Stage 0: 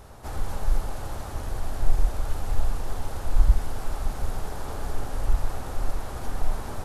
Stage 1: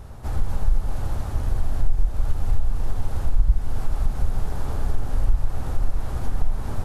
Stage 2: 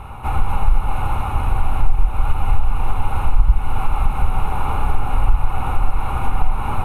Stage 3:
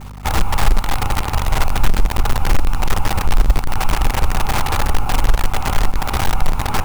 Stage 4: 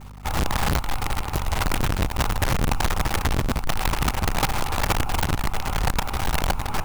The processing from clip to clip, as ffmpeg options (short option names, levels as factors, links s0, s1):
-af "bass=f=250:g=9,treble=f=4000:g=-2,acompressor=threshold=0.2:ratio=3"
-af "superequalizer=9b=3.98:10b=3.55:12b=3.98:14b=0.251:15b=0.316,volume=1.68"
-af "acrusher=bits=4:dc=4:mix=0:aa=0.000001,aeval=exprs='val(0)+0.0251*(sin(2*PI*50*n/s)+sin(2*PI*2*50*n/s)/2+sin(2*PI*3*50*n/s)/3+sin(2*PI*4*50*n/s)/4+sin(2*PI*5*50*n/s)/5)':c=same"
-af "aeval=exprs='(mod(2.82*val(0)+1,2)-1)/2.82':c=same,volume=0.422"